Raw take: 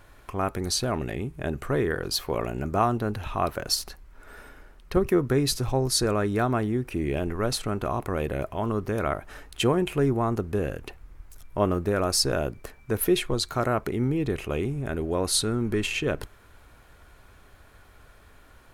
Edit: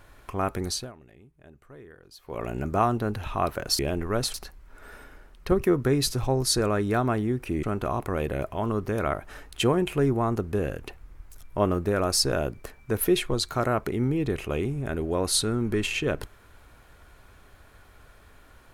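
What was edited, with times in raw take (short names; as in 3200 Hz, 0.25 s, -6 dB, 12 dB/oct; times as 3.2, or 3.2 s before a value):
0.62–2.53 dip -22 dB, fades 0.31 s linear
7.08–7.63 move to 3.79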